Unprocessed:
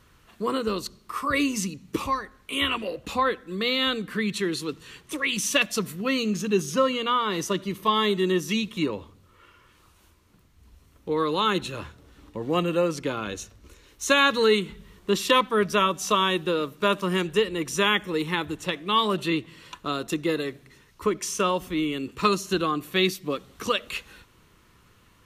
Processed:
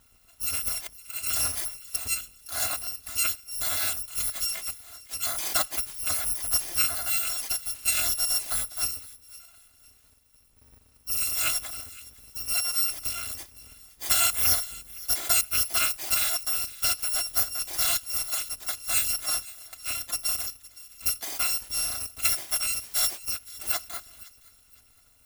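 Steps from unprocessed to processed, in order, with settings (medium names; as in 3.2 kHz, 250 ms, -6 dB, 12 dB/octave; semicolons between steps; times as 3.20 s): bit-reversed sample order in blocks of 256 samples; feedback echo behind a high-pass 514 ms, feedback 32%, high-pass 1.7 kHz, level -19 dB; trim -3 dB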